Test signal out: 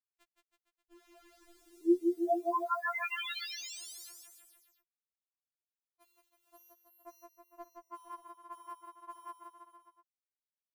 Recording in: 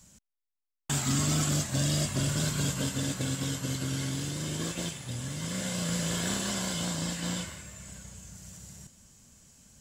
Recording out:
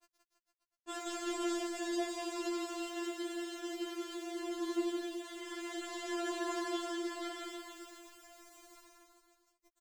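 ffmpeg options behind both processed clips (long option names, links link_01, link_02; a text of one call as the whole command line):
ffmpeg -i in.wav -filter_complex "[0:a]lowpass=frequency=1200:poles=1,lowshelf=frequency=110:width_type=q:width=3:gain=-12.5,aeval=exprs='val(0)*gte(abs(val(0)),0.00376)':channel_layout=same,asplit=2[link_01][link_02];[link_02]aecho=0:1:170|323|460.7|584.6|696.2:0.631|0.398|0.251|0.158|0.1[link_03];[link_01][link_03]amix=inputs=2:normalize=0,afftfilt=real='re*4*eq(mod(b,16),0)':imag='im*4*eq(mod(b,16),0)':win_size=2048:overlap=0.75" out.wav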